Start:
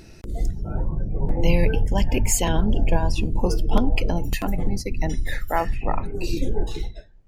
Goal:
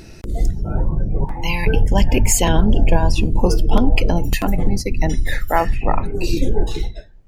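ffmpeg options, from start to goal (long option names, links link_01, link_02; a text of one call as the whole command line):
ffmpeg -i in.wav -filter_complex "[0:a]asettb=1/sr,asplit=3[link_01][link_02][link_03];[link_01]atrim=end=1.244[link_04];[link_02]atrim=start=1.24:end=1.67,asetpts=PTS-STARTPTS,afade=type=in:duration=0.004:curve=qsin,afade=type=out:start_time=0.426:duration=0.004:curve=qsin,lowshelf=frequency=730:width_type=q:width=3:gain=-10[link_05];[link_03]atrim=start=1.666[link_06];[link_04][link_05]acrossfade=duration=0.004:curve1=hsin:curve2=qsin[link_07];[link_07][link_06]acrossfade=duration=0.004:curve1=qsin:curve2=hsin,alimiter=level_in=7dB:limit=-1dB:release=50:level=0:latency=1,volume=-1dB" out.wav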